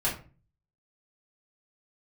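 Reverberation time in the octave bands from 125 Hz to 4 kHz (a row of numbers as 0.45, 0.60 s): 0.70, 0.55, 0.40, 0.35, 0.30, 0.25 s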